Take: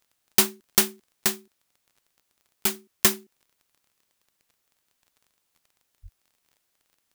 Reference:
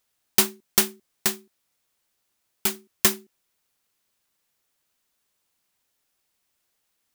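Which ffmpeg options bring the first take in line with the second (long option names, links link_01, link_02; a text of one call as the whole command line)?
ffmpeg -i in.wav -filter_complex "[0:a]adeclick=threshold=4,asplit=3[link_01][link_02][link_03];[link_01]afade=type=out:start_time=6.02:duration=0.02[link_04];[link_02]highpass=frequency=140:width=0.5412,highpass=frequency=140:width=1.3066,afade=type=in:start_time=6.02:duration=0.02,afade=type=out:start_time=6.14:duration=0.02[link_05];[link_03]afade=type=in:start_time=6.14:duration=0.02[link_06];[link_04][link_05][link_06]amix=inputs=3:normalize=0" out.wav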